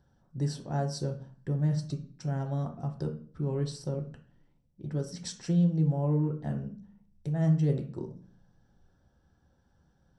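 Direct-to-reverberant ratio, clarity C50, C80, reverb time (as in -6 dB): 3.0 dB, 10.0 dB, 16.0 dB, 0.45 s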